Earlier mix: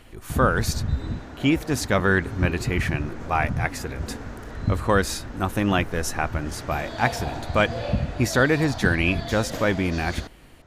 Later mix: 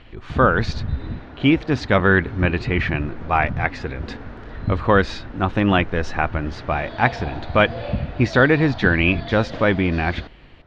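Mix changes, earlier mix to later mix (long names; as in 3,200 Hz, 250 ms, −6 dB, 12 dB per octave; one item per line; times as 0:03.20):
speech +4.5 dB
master: add low-pass filter 4,000 Hz 24 dB per octave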